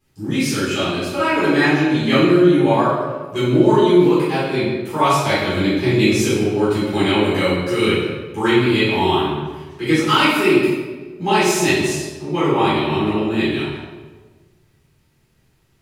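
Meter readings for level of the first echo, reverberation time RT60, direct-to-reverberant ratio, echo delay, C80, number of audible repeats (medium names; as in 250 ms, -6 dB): no echo, 1.4 s, -13.0 dB, no echo, 2.0 dB, no echo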